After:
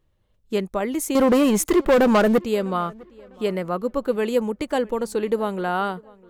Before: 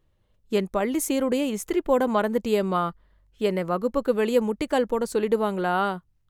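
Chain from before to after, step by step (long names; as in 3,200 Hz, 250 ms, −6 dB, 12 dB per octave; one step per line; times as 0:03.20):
0:01.15–0:02.39: leveller curve on the samples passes 3
tape delay 652 ms, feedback 35%, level −23 dB, low-pass 3,500 Hz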